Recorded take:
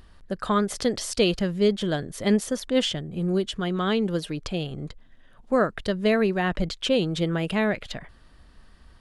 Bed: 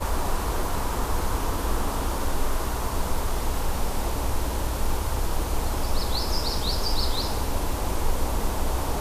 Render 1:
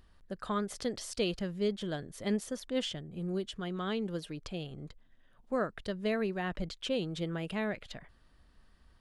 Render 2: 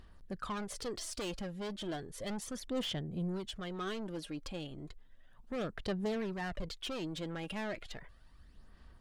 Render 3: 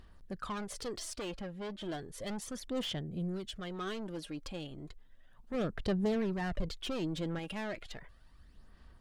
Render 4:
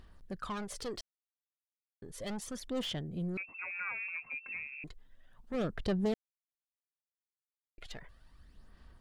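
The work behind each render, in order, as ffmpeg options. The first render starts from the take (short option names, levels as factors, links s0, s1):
-af "volume=0.299"
-af "asoftclip=type=tanh:threshold=0.0178,aphaser=in_gain=1:out_gain=1:delay=3.7:decay=0.46:speed=0.34:type=sinusoidal"
-filter_complex "[0:a]asettb=1/sr,asplit=3[s0][s1][s2];[s0]atrim=end=1.134[s3];[s1]atrim=start=1.13:end=1.83,asetpts=PTS-STARTPTS,afade=t=in:d=0.004:c=qsin,afade=t=out:st=0.696:d=0.004:c=qsin,bass=f=250:g=-2,treble=f=4000:g=-9[s4];[s2]atrim=start=1.826[s5];[s3][s4]acrossfade=d=0.004:c1=hsin:c2=qsin[s6];[s6][s5]acrossfade=d=0.004:c1=qsin:c2=hsin,asettb=1/sr,asplit=3[s7][s8][s9];[s7]atrim=end=3.034[s10];[s8]atrim=start=3.03:end=3.62,asetpts=PTS-STARTPTS,afade=t=in:d=0.004:c=qsin,afade=t=out:st=0.586:d=0.004:c=qsin,equalizer=f=940:w=3.3:g=-10[s11];[s9]atrim=start=3.616[s12];[s10][s11]acrossfade=d=0.004:c1=hsin:c2=qsin[s13];[s13][s12]acrossfade=d=0.004:c1=qsin:c2=hsin,asettb=1/sr,asplit=3[s14][s15][s16];[s14]atrim=end=5.544[s17];[s15]atrim=start=5.54:end=7.39,asetpts=PTS-STARTPTS,afade=t=in:d=0.004:c=qsin,afade=t=out:st=1.846:d=0.004:c=qsin,lowshelf=f=480:g=6[s18];[s16]atrim=start=7.386[s19];[s17][s18]acrossfade=d=0.004:c1=hsin:c2=qsin[s20];[s20][s19]acrossfade=d=0.004:c1=qsin:c2=hsin"
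-filter_complex "[0:a]asettb=1/sr,asplit=3[s0][s1][s2];[s0]atrim=end=3.374[s3];[s1]atrim=start=3.37:end=4.84,asetpts=PTS-STARTPTS,afade=t=in:d=0.004:c=qsin,afade=t=out:st=1.466:d=0.004:c=qsin,lowpass=f=2300:t=q:w=0.5098,lowpass=f=2300:t=q:w=0.6013,lowpass=f=2300:t=q:w=0.9,lowpass=f=2300:t=q:w=2.563,afreqshift=-2700[s4];[s2]atrim=start=4.836[s5];[s3][s4]acrossfade=d=0.004:c1=hsin:c2=qsin[s6];[s6][s5]acrossfade=d=0.004:c1=qsin:c2=hsin,asplit=5[s7][s8][s9][s10][s11];[s7]atrim=end=1.01,asetpts=PTS-STARTPTS,afade=t=out:st=1.006:d=0.004:c=hsin[s12];[s8]atrim=start=1.01:end=2.02,asetpts=PTS-STARTPTS,volume=0[s13];[s9]atrim=start=2.02:end=6.14,asetpts=PTS-STARTPTS,afade=t=in:d=0.004:c=hsin,afade=t=out:st=4.116:d=0.004:c=hsin[s14];[s10]atrim=start=6.14:end=7.78,asetpts=PTS-STARTPTS,volume=0[s15];[s11]atrim=start=7.78,asetpts=PTS-STARTPTS,afade=t=in:d=0.004:c=hsin[s16];[s12][s13][s14][s15][s16]concat=n=5:v=0:a=1"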